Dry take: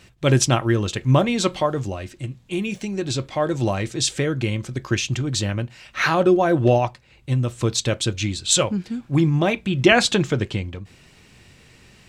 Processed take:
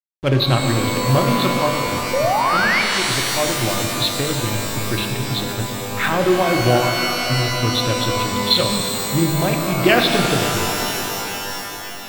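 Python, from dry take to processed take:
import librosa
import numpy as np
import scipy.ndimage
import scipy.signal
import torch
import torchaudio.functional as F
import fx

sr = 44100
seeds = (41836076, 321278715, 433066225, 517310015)

y = fx.freq_compress(x, sr, knee_hz=3400.0, ratio=4.0)
y = fx.hum_notches(y, sr, base_hz=50, count=9)
y = fx.backlash(y, sr, play_db=-22.0)
y = fx.spec_paint(y, sr, seeds[0], shape='rise', start_s=2.13, length_s=0.69, low_hz=500.0, high_hz=2400.0, level_db=-19.0)
y = fx.rev_shimmer(y, sr, seeds[1], rt60_s=3.7, semitones=12, shimmer_db=-2, drr_db=3.5)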